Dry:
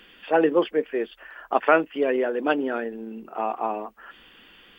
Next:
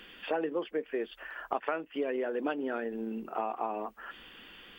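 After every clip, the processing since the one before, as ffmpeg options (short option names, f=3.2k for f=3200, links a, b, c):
-af "acompressor=threshold=-29dB:ratio=8"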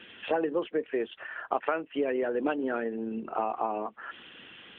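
-af "volume=4dB" -ar 8000 -c:a libopencore_amrnb -b:a 12200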